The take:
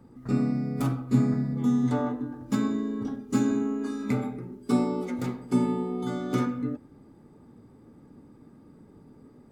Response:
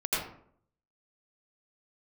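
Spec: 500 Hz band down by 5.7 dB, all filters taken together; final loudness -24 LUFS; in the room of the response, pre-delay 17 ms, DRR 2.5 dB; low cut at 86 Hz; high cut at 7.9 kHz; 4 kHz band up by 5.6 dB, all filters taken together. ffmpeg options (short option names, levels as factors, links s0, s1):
-filter_complex "[0:a]highpass=86,lowpass=7900,equalizer=f=500:t=o:g=-8,equalizer=f=4000:t=o:g=7,asplit=2[s0][s1];[1:a]atrim=start_sample=2205,adelay=17[s2];[s1][s2]afir=irnorm=-1:irlink=0,volume=0.266[s3];[s0][s3]amix=inputs=2:normalize=0,volume=1.68"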